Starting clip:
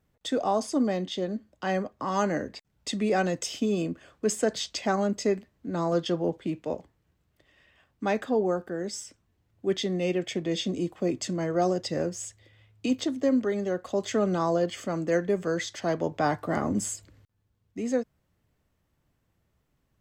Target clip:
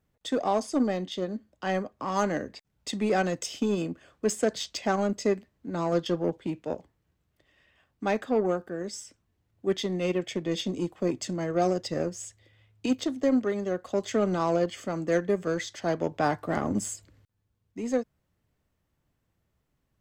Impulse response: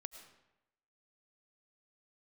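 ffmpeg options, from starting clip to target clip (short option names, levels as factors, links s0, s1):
-af "aeval=exprs='0.211*(cos(1*acos(clip(val(0)/0.211,-1,1)))-cos(1*PI/2))+0.00841*(cos(7*acos(clip(val(0)/0.211,-1,1)))-cos(7*PI/2))':c=same"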